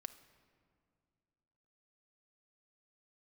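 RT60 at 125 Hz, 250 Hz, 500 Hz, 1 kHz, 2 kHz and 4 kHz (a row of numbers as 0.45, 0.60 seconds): 2.7, 2.7, 2.4, 2.1, 1.7, 1.2 seconds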